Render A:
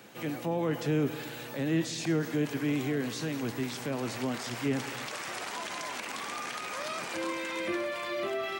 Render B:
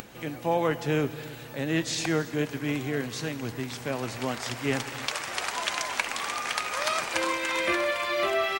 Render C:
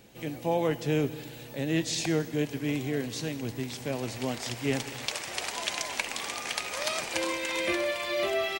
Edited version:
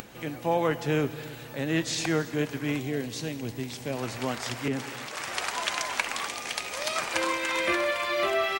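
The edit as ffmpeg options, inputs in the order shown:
-filter_complex "[2:a]asplit=2[a][b];[1:a]asplit=4[c][d][e][f];[c]atrim=end=2.802[g];[a]atrim=start=2.798:end=3.972[h];[d]atrim=start=3.968:end=4.682[i];[0:a]atrim=start=4.678:end=5.172[j];[e]atrim=start=5.168:end=6.272[k];[b]atrim=start=6.268:end=6.962[l];[f]atrim=start=6.958[m];[g][h]acrossfade=d=0.004:c1=hsin:c2=hsin[n];[n][i]acrossfade=d=0.004:c1=hsin:c2=hsin[o];[o][j]acrossfade=d=0.004:c1=hsin:c2=hsin[p];[p][k]acrossfade=d=0.004:c1=hsin:c2=hsin[q];[q][l]acrossfade=d=0.004:c1=hsin:c2=hsin[r];[r][m]acrossfade=d=0.004:c1=hsin:c2=hsin"

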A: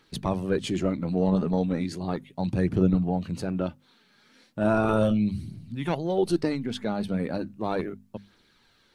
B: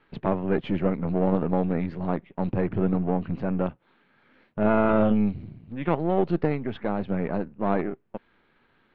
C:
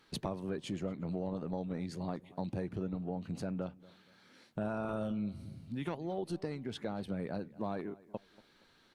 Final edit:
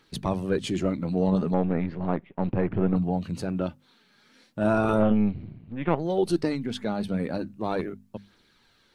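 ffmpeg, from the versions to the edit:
-filter_complex "[1:a]asplit=2[a][b];[0:a]asplit=3[c][d][e];[c]atrim=end=1.542[f];[a]atrim=start=1.538:end=2.962[g];[d]atrim=start=2.958:end=5.03[h];[b]atrim=start=4.93:end=6.06[i];[e]atrim=start=5.96[j];[f][g]acrossfade=d=0.004:c1=hsin:c2=hsin[k];[k][h]acrossfade=d=0.004:c1=hsin:c2=hsin[l];[l][i]acrossfade=d=0.1:c1=tri:c2=tri[m];[m][j]acrossfade=d=0.1:c1=tri:c2=tri"

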